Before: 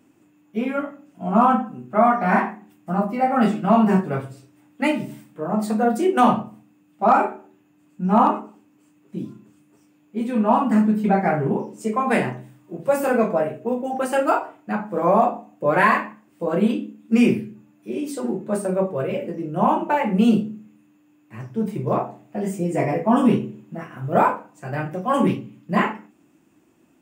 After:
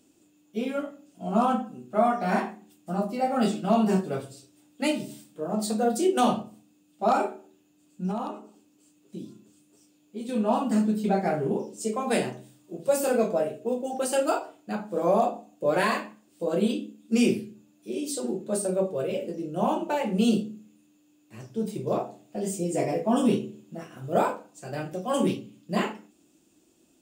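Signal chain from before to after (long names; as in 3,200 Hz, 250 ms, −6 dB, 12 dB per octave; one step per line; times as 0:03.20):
octave-band graphic EQ 125/250/1,000/2,000/4,000/8,000 Hz −9/−4/−9/−10/+7/+5 dB
0:08.11–0:10.29: downward compressor 2 to 1, threshold −36 dBFS, peak gain reduction 10 dB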